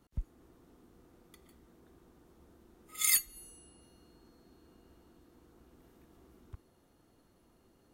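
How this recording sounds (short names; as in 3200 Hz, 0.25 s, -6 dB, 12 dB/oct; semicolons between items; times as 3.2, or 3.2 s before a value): noise floor -68 dBFS; spectral tilt 0.0 dB/oct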